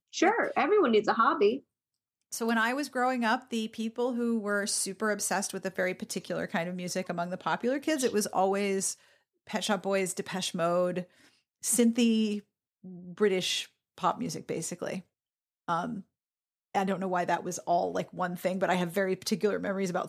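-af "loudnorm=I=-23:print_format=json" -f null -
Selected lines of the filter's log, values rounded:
"input_i" : "-29.7",
"input_tp" : "-12.8",
"input_lra" : "3.2",
"input_thresh" : "-40.1",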